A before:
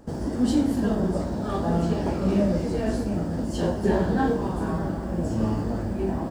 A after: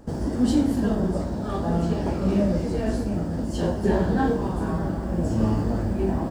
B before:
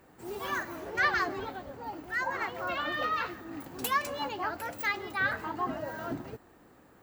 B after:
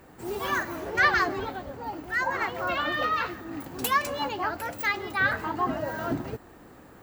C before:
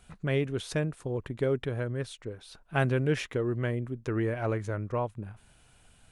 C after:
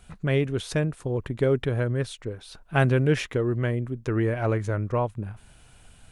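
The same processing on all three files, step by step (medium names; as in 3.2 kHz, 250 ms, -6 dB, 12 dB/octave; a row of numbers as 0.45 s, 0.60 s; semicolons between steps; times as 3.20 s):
gain riding within 4 dB 2 s; bass shelf 110 Hz +4 dB; peak normalisation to -9 dBFS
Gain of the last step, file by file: -0.5 dB, +4.0 dB, +3.5 dB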